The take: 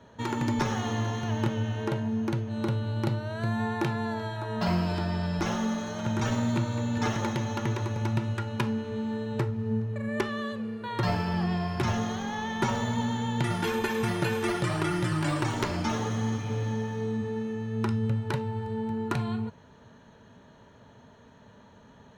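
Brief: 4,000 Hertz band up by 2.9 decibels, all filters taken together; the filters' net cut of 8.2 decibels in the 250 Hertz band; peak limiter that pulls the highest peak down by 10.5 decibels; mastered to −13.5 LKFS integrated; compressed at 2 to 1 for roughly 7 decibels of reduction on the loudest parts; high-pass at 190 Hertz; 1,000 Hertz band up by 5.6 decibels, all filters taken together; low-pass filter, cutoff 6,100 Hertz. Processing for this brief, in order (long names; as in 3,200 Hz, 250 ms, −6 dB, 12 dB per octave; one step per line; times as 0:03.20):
high-pass filter 190 Hz
low-pass filter 6,100 Hz
parametric band 250 Hz −8.5 dB
parametric band 1,000 Hz +7 dB
parametric band 4,000 Hz +4 dB
downward compressor 2 to 1, threshold −36 dBFS
level +24.5 dB
brickwall limiter −3.5 dBFS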